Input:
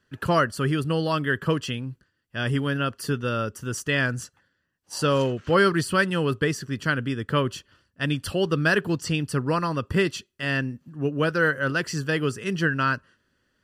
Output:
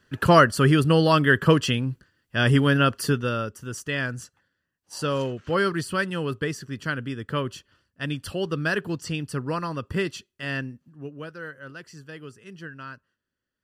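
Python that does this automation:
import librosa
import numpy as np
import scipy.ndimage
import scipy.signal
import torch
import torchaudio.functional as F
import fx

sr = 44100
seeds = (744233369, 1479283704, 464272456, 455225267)

y = fx.gain(x, sr, db=fx.line((2.95, 6.0), (3.57, -4.0), (10.59, -4.0), (11.35, -16.0)))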